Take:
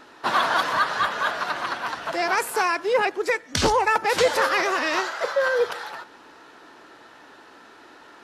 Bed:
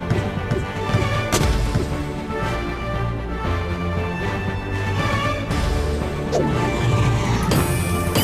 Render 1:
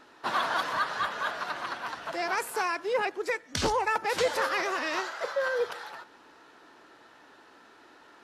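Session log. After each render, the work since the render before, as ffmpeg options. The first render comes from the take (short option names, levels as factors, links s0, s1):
-af "volume=0.447"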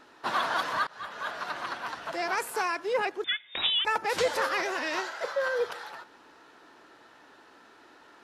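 -filter_complex "[0:a]asettb=1/sr,asplit=3[s0][s1][s2];[s0]atrim=end=3.244[s3];[s1]atrim=start=3.24:end=3.85,asetpts=PTS-STARTPTS,afade=t=in:d=0.004:c=qsin,afade=t=out:st=0.606:d=0.004:c=qsin,lowpass=f=3300:t=q:w=0.5098,lowpass=f=3300:t=q:w=0.6013,lowpass=f=3300:t=q:w=0.9,lowpass=f=3300:t=q:w=2.563,afreqshift=-3900[s4];[s2]atrim=start=3.846[s5];[s3][s4]acrossfade=d=0.004:c1=hsin:c2=qsin[s6];[s6][s5]acrossfade=d=0.004:c1=qsin:c2=hsin,asettb=1/sr,asplit=3[s7][s8][s9];[s7]atrim=end=4.614[s10];[s8]atrim=start=4.61:end=5.26,asetpts=PTS-STARTPTS,afade=t=in:d=0.004:c=qsin,afade=t=out:st=0.646:d=0.004:c=qsin,asuperstop=centerf=1200:order=4:qfactor=7.8[s11];[s9]atrim=start=5.256[s12];[s10][s11]acrossfade=d=0.004:c1=hsin:c2=qsin[s13];[s13][s12]acrossfade=d=0.004:c1=qsin:c2=hsin,asplit=2[s14][s15];[s14]atrim=end=0.87,asetpts=PTS-STARTPTS,afade=t=out:st=0.866:d=0.004:c=hsin:silence=0.0668344[s16];[s15]atrim=start=0.87,asetpts=PTS-STARTPTS,afade=t=in:d=0.85:c=qsin:silence=0.0668344[s17];[s16][s17]concat=n=2:v=0:a=1"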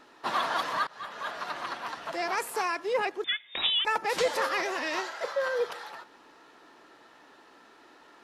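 -af "equalizer=f=94:t=o:w=0.4:g=-11.5,bandreject=f=1500:w=14"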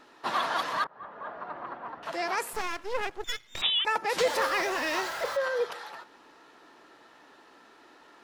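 -filter_complex "[0:a]asettb=1/sr,asplit=3[s0][s1][s2];[s0]atrim=end=0.844[s3];[s1]atrim=start=0.84:end=2.03,asetpts=PTS-STARTPTS,afade=t=in:d=0.004:c=qsin,afade=t=out:st=1.186:d=0.004:c=qsin,lowpass=1100[s4];[s2]atrim=start=2.026[s5];[s3][s4]acrossfade=d=0.004:c1=hsin:c2=qsin[s6];[s6][s5]acrossfade=d=0.004:c1=qsin:c2=hsin,asettb=1/sr,asplit=3[s7][s8][s9];[s7]atrim=end=2.534[s10];[s8]atrim=start=2.53:end=3.62,asetpts=PTS-STARTPTS,afade=t=in:d=0.004:c=qsin,afade=t=out:st=1.086:d=0.004:c=qsin,aeval=exprs='max(val(0),0)':c=same[s11];[s9]atrim=start=3.616[s12];[s10][s11]acrossfade=d=0.004:c1=hsin:c2=qsin[s13];[s13][s12]acrossfade=d=0.004:c1=qsin:c2=hsin,asettb=1/sr,asplit=3[s14][s15][s16];[s14]atrim=end=4.194[s17];[s15]atrim=start=4.19:end=5.37,asetpts=PTS-STARTPTS,afade=t=in:d=0.004:c=qsin,afade=t=out:st=1.176:d=0.004:c=qsin,aeval=exprs='val(0)+0.5*0.0158*sgn(val(0))':c=same[s18];[s16]atrim=start=5.366[s19];[s17][s18]acrossfade=d=0.004:c1=hsin:c2=qsin[s20];[s20][s19]acrossfade=d=0.004:c1=qsin:c2=hsin"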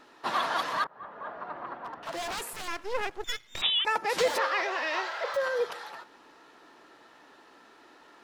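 -filter_complex "[0:a]asettb=1/sr,asplit=3[s0][s1][s2];[s0]atrim=end=1.834[s3];[s1]atrim=start=1.83:end=2.68,asetpts=PTS-STARTPTS,afade=t=in:d=0.004:c=qsin,afade=t=out:st=0.846:d=0.004:c=qsin,aeval=exprs='0.0335*(abs(mod(val(0)/0.0335+3,4)-2)-1)':c=same[s4];[s2]atrim=start=2.676[s5];[s3][s4]acrossfade=d=0.004:c1=hsin:c2=qsin[s6];[s6][s5]acrossfade=d=0.004:c1=qsin:c2=hsin,asettb=1/sr,asplit=3[s7][s8][s9];[s7]atrim=end=4.384[s10];[s8]atrim=start=4.38:end=5.34,asetpts=PTS-STARTPTS,afade=t=in:d=0.004:c=qsin,afade=t=out:st=0.956:d=0.004:c=qsin,acrossover=split=370 5200:gain=0.0631 1 0.0708[s11][s12][s13];[s11][s12][s13]amix=inputs=3:normalize=0[s14];[s9]atrim=start=5.336[s15];[s10][s14]acrossfade=d=0.004:c1=hsin:c2=qsin[s16];[s16][s15]acrossfade=d=0.004:c1=qsin:c2=hsin"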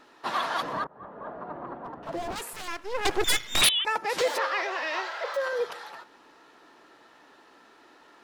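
-filter_complex "[0:a]asettb=1/sr,asplit=3[s0][s1][s2];[s0]atrim=end=0.624[s3];[s1]atrim=start=0.62:end=2.36,asetpts=PTS-STARTPTS,afade=t=in:d=0.004:c=qsin,afade=t=out:st=1.736:d=0.004:c=qsin,tiltshelf=f=890:g=9.5[s4];[s2]atrim=start=2.356[s5];[s3][s4]acrossfade=d=0.004:c1=hsin:c2=qsin[s6];[s6][s5]acrossfade=d=0.004:c1=qsin:c2=hsin,asettb=1/sr,asplit=3[s7][s8][s9];[s7]atrim=end=3.054[s10];[s8]atrim=start=3.05:end=3.69,asetpts=PTS-STARTPTS,afade=t=in:d=0.004:c=qsin,afade=t=out:st=0.636:d=0.004:c=qsin,aeval=exprs='0.178*sin(PI/2*4.47*val(0)/0.178)':c=same[s11];[s9]atrim=start=3.686[s12];[s10][s11]acrossfade=d=0.004:c1=hsin:c2=qsin[s13];[s13][s12]acrossfade=d=0.004:c1=qsin:c2=hsin,asettb=1/sr,asplit=3[s14][s15][s16];[s14]atrim=end=4.214[s17];[s15]atrim=start=4.21:end=5.53,asetpts=PTS-STARTPTS,afade=t=in:d=0.004:c=qsin,afade=t=out:st=1.316:d=0.004:c=qsin,highpass=f=260:w=0.5412,highpass=f=260:w=1.3066[s18];[s16]atrim=start=5.526[s19];[s17][s18]acrossfade=d=0.004:c1=hsin:c2=qsin[s20];[s20][s19]acrossfade=d=0.004:c1=qsin:c2=hsin"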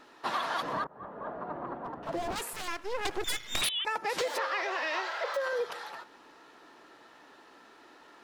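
-af "acompressor=threshold=0.0398:ratio=6"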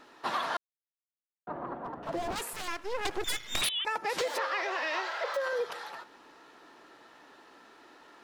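-filter_complex "[0:a]asplit=3[s0][s1][s2];[s0]atrim=end=0.57,asetpts=PTS-STARTPTS,afade=t=out:st=0.566:d=0.004:c=hsin[s3];[s1]atrim=start=0.57:end=1.47,asetpts=PTS-STARTPTS,volume=0[s4];[s2]atrim=start=1.47,asetpts=PTS-STARTPTS,afade=t=in:d=0.004:c=hsin[s5];[s3][s4][s5]concat=n=3:v=0:a=1"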